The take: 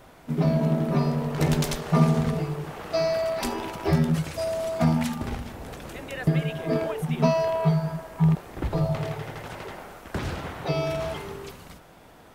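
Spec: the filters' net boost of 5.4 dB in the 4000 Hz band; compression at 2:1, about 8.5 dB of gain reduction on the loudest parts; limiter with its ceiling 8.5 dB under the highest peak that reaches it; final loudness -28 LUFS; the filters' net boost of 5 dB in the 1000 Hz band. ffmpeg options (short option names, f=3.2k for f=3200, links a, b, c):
-af "equalizer=f=1k:t=o:g=6,equalizer=f=4k:t=o:g=6.5,acompressor=threshold=-29dB:ratio=2,volume=5dB,alimiter=limit=-18.5dB:level=0:latency=1"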